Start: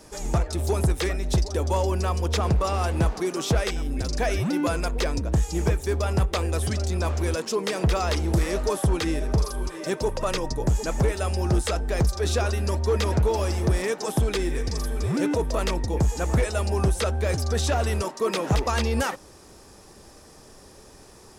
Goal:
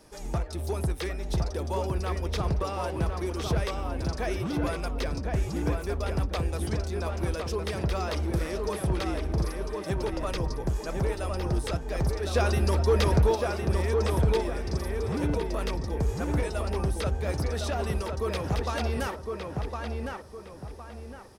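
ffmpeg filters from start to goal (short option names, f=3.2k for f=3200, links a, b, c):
-filter_complex "[0:a]equalizer=f=7.2k:t=o:w=0.37:g=-7.5,asplit=3[a][b][c];[a]afade=t=out:st=12.34:d=0.02[d];[b]acontrast=83,afade=t=in:st=12.34:d=0.02,afade=t=out:st=13.34:d=0.02[e];[c]afade=t=in:st=13.34:d=0.02[f];[d][e][f]amix=inputs=3:normalize=0,asplit=2[g][h];[h]adelay=1060,lowpass=f=2.3k:p=1,volume=-3dB,asplit=2[i][j];[j]adelay=1060,lowpass=f=2.3k:p=1,volume=0.37,asplit=2[k][l];[l]adelay=1060,lowpass=f=2.3k:p=1,volume=0.37,asplit=2[m][n];[n]adelay=1060,lowpass=f=2.3k:p=1,volume=0.37,asplit=2[o][p];[p]adelay=1060,lowpass=f=2.3k:p=1,volume=0.37[q];[g][i][k][m][o][q]amix=inputs=6:normalize=0,volume=-6.5dB"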